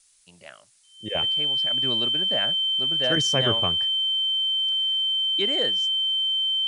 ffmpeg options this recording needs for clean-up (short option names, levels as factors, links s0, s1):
-af "bandreject=f=3100:w=30,agate=range=0.0891:threshold=0.00562"